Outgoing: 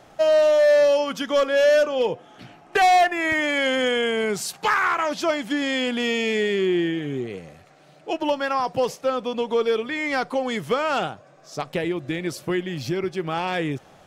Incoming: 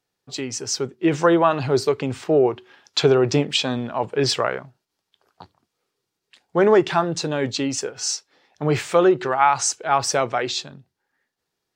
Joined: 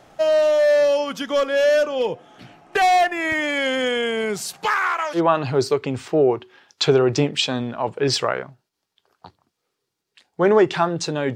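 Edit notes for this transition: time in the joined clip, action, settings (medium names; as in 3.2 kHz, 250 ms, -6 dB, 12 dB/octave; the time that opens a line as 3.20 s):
outgoing
4.66–5.21 s: high-pass 290 Hz -> 820 Hz
5.17 s: go over to incoming from 1.33 s, crossfade 0.08 s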